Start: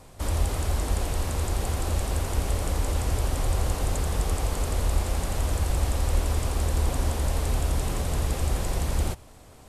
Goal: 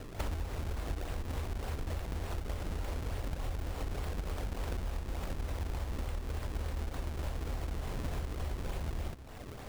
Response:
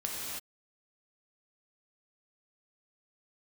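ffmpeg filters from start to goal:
-af "bandreject=frequency=66.32:width_type=h:width=4,bandreject=frequency=132.64:width_type=h:width=4,bandreject=frequency=198.96:width_type=h:width=4,bandreject=frequency=265.28:width_type=h:width=4,bandreject=frequency=331.6:width_type=h:width=4,acompressor=threshold=-37dB:ratio=16,acrusher=samples=34:mix=1:aa=0.000001:lfo=1:lforange=54.4:lforate=3.4,volume=4.5dB"

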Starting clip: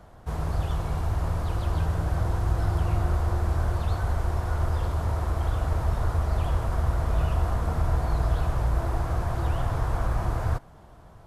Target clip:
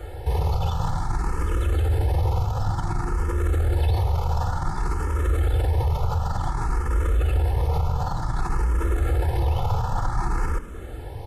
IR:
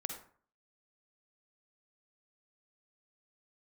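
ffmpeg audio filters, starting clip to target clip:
-filter_complex "[0:a]aecho=1:1:2.3:0.91,asplit=2[link_01][link_02];[link_02]acompressor=threshold=-35dB:ratio=6,volume=-0.5dB[link_03];[link_01][link_03]amix=inputs=2:normalize=0,alimiter=limit=-22dB:level=0:latency=1:release=11,asplit=2[link_04][link_05];[link_05]asplit=6[link_06][link_07][link_08][link_09][link_10][link_11];[link_06]adelay=204,afreqshift=-69,volume=-17.5dB[link_12];[link_07]adelay=408,afreqshift=-138,volume=-21.9dB[link_13];[link_08]adelay=612,afreqshift=-207,volume=-26.4dB[link_14];[link_09]adelay=816,afreqshift=-276,volume=-30.8dB[link_15];[link_10]adelay=1020,afreqshift=-345,volume=-35.2dB[link_16];[link_11]adelay=1224,afreqshift=-414,volume=-39.7dB[link_17];[link_12][link_13][link_14][link_15][link_16][link_17]amix=inputs=6:normalize=0[link_18];[link_04][link_18]amix=inputs=2:normalize=0,asplit=2[link_19][link_20];[link_20]afreqshift=0.55[link_21];[link_19][link_21]amix=inputs=2:normalize=1,volume=8dB"

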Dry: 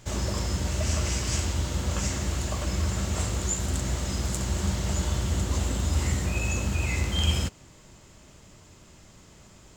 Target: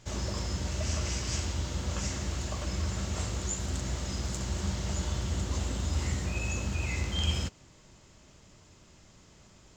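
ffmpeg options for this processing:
ffmpeg -i in.wav -af "highshelf=frequency=7900:width_type=q:width=1.5:gain=-7.5,volume=-5dB" out.wav

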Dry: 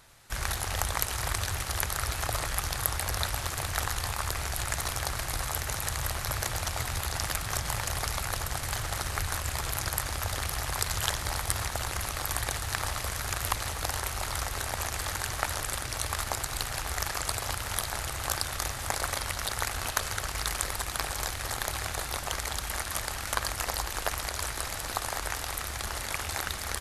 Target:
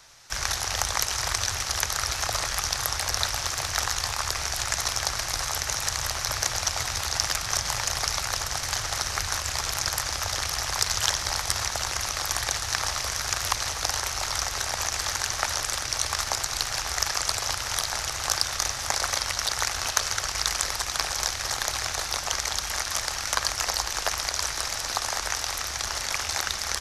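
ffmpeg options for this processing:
ffmpeg -i in.wav -filter_complex "[0:a]equalizer=frequency=5800:width=1.8:gain=12,acrossover=split=210|520|5900[link_01][link_02][link_03][link_04];[link_03]acontrast=67[link_05];[link_01][link_02][link_05][link_04]amix=inputs=4:normalize=0,volume=-3dB" out.wav

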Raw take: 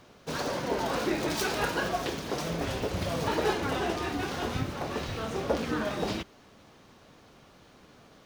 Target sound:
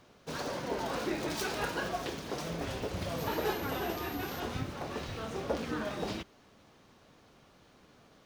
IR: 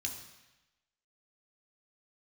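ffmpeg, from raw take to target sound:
-filter_complex "[0:a]asettb=1/sr,asplit=3[link_01][link_02][link_03];[link_01]atrim=end=3.184[link_04];[link_02]atrim=start=3.18:end=4.4,asetpts=PTS-STARTPTS,afade=type=in:duration=0.004:curve=qsin,afade=type=out:start_time=1.216:duration=0.004:curve=qsin,aeval=exprs='val(0)+0.00708*sin(2*PI*12000*n/s)':channel_layout=same[link_05];[link_03]atrim=start=4.396[link_06];[link_04][link_05]acrossfade=duration=0.004:curve1=hsin:curve2=qsin[link_07];[link_07][link_06]acrossfade=duration=0.004:curve1=qsin:curve2=hsin,volume=-5dB"

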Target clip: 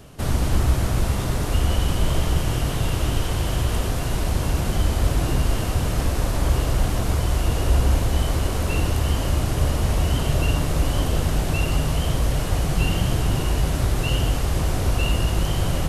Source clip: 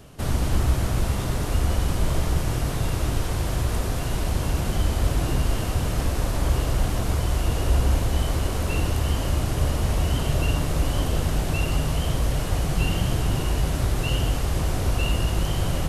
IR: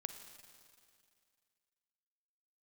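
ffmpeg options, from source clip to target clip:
-filter_complex "[0:a]asettb=1/sr,asplit=3[link_01][link_02][link_03];[link_01]atrim=end=1.534[link_04];[link_02]atrim=start=1.53:end=3.91,asetpts=PTS-STARTPTS,afade=type=in:duration=0.004:curve=qsin,afade=type=out:start_time=2.376:duration=0.004:curve=qsin,equalizer=frequency=3000:width_type=o:width=0.22:gain=7[link_05];[link_03]atrim=start=3.906[link_06];[link_04][link_05]acrossfade=duration=0.004:curve1=hsin:curve2=qsin[link_07];[link_07][link_06]acrossfade=duration=0.004:curve1=qsin:curve2=hsin,volume=2dB"

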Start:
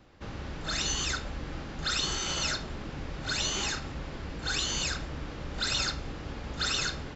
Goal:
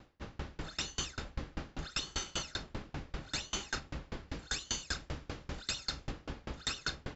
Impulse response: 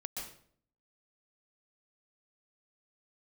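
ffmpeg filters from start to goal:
-filter_complex "[0:a]asettb=1/sr,asplit=3[link_01][link_02][link_03];[link_01]atrim=end=4.284[link_04];[link_02]atrim=start=4.28:end=6.11,asetpts=PTS-STARTPTS,afade=type=in:duration=0.004:curve=qsin,afade=type=out:start_time=1.826:duration=0.004:curve=qsin,highshelf=frequency=4300:gain=6[link_05];[link_03]atrim=start=6.106[link_06];[link_04][link_05]acrossfade=duration=0.004:curve1=hsin:curve2=qsin[link_07];[link_07][link_06]acrossfade=duration=0.004:curve1=qsin:curve2=hsin,alimiter=limit=-24dB:level=0:latency=1:release=76,aeval=exprs='val(0)*pow(10,-30*if(lt(mod(5.1*n/s,1),2*abs(5.1)/1000),1-mod(5.1*n/s,1)/(2*abs(5.1)/1000),(mod(5.1*n/s,1)-2*abs(5.1)/1000)/(1-2*abs(5.1)/1000))/20)':channel_layout=same,volume=3dB"

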